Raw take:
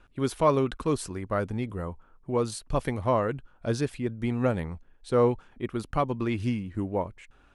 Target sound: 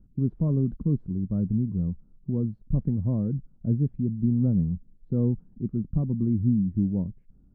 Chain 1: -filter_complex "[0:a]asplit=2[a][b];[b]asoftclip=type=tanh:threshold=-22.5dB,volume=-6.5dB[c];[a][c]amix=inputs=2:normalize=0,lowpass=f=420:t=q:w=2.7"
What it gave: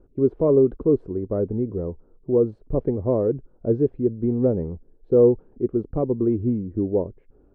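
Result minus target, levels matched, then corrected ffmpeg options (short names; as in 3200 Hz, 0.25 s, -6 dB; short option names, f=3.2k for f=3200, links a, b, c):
500 Hz band +14.5 dB
-filter_complex "[0:a]asplit=2[a][b];[b]asoftclip=type=tanh:threshold=-22.5dB,volume=-6.5dB[c];[a][c]amix=inputs=2:normalize=0,lowpass=f=190:t=q:w=2.7"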